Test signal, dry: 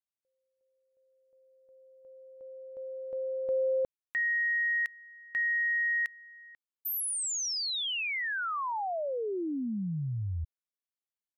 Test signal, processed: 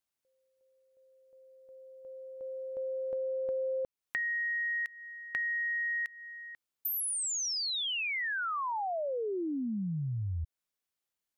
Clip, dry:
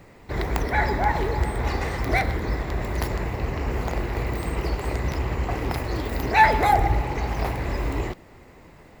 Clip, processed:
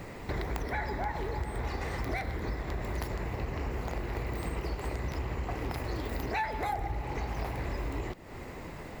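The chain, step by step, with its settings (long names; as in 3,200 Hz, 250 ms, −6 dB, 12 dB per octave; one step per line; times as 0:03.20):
downward compressor 5 to 1, threshold −39 dBFS
level +6 dB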